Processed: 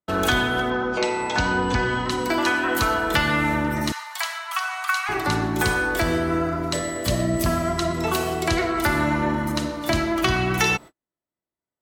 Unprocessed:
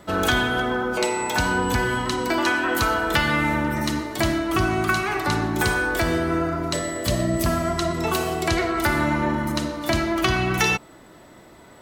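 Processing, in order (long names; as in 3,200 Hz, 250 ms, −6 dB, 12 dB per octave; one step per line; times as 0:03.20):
0:00.70–0:02.10: low-pass filter 6,500 Hz 24 dB per octave
noise gate −36 dBFS, range −46 dB
0:03.92–0:05.09: Butterworth high-pass 810 Hz 48 dB per octave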